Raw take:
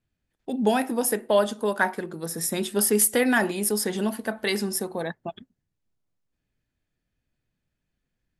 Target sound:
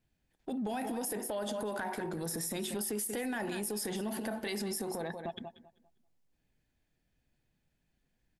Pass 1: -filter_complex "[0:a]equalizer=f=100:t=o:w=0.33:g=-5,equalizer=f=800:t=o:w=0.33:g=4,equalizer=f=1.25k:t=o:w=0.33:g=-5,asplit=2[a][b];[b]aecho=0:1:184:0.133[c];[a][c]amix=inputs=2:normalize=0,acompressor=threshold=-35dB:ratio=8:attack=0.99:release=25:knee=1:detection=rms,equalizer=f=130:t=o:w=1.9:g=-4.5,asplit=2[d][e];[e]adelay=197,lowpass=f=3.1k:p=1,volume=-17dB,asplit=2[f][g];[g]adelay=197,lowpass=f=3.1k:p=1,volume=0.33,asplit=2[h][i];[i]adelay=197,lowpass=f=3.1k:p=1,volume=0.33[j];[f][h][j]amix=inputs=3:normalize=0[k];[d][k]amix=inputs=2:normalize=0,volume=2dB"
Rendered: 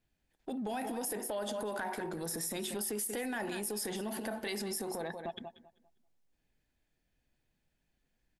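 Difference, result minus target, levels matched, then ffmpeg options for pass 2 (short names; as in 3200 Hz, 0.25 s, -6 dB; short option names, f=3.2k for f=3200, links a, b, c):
125 Hz band -2.5 dB
-filter_complex "[0:a]equalizer=f=100:t=o:w=0.33:g=-5,equalizer=f=800:t=o:w=0.33:g=4,equalizer=f=1.25k:t=o:w=0.33:g=-5,asplit=2[a][b];[b]aecho=0:1:184:0.133[c];[a][c]amix=inputs=2:normalize=0,acompressor=threshold=-35dB:ratio=8:attack=0.99:release=25:knee=1:detection=rms,asplit=2[d][e];[e]adelay=197,lowpass=f=3.1k:p=1,volume=-17dB,asplit=2[f][g];[g]adelay=197,lowpass=f=3.1k:p=1,volume=0.33,asplit=2[h][i];[i]adelay=197,lowpass=f=3.1k:p=1,volume=0.33[j];[f][h][j]amix=inputs=3:normalize=0[k];[d][k]amix=inputs=2:normalize=0,volume=2dB"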